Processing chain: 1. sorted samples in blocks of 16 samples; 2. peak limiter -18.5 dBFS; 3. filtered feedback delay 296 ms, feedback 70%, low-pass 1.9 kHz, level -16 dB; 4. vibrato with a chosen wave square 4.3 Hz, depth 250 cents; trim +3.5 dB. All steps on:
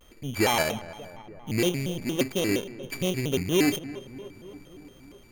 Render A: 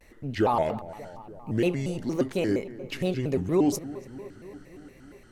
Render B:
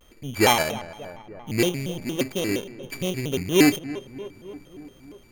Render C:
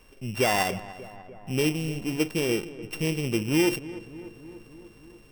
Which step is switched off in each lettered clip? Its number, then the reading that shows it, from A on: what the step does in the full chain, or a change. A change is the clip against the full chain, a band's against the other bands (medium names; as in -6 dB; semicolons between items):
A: 1, distortion -6 dB; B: 2, crest factor change +4.5 dB; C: 4, 4 kHz band -2.0 dB